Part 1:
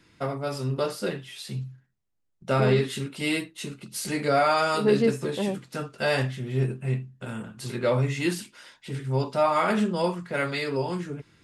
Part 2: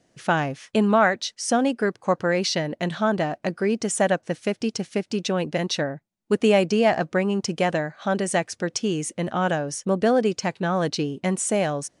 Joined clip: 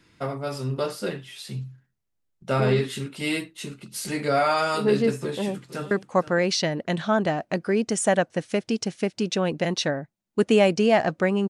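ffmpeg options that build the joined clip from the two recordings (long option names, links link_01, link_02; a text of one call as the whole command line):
ffmpeg -i cue0.wav -i cue1.wav -filter_complex "[0:a]apad=whole_dur=11.49,atrim=end=11.49,atrim=end=5.912[link_01];[1:a]atrim=start=1.838:end=7.42[link_02];[link_01][link_02]acrossfade=duration=0.004:curve1=hsin:curve2=hsin,asplit=2[link_03][link_04];[link_04]afade=type=in:start_time=5.21:duration=0.01,afade=type=out:start_time=5.91:duration=0.01,aecho=0:1:470|940:0.16788|0.0251821[link_05];[link_03][link_05]amix=inputs=2:normalize=0" out.wav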